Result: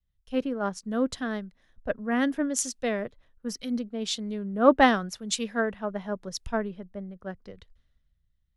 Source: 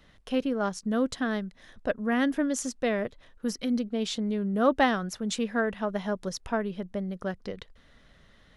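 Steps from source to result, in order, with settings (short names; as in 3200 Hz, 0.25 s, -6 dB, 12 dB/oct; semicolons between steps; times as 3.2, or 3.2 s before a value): three-band expander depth 100%; gain -1.5 dB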